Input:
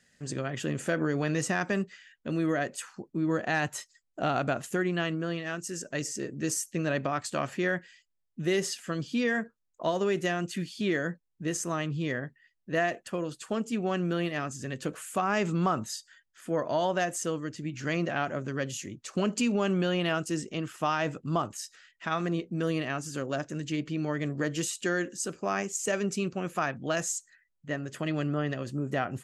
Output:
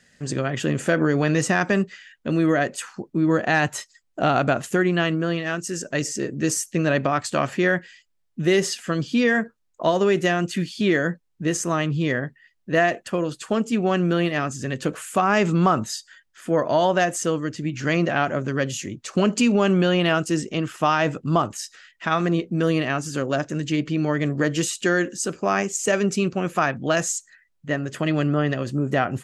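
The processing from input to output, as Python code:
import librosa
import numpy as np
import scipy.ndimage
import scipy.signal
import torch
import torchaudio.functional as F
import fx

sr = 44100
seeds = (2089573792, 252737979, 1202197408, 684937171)

y = fx.high_shelf(x, sr, hz=8500.0, db=-6.0)
y = y * librosa.db_to_amplitude(8.5)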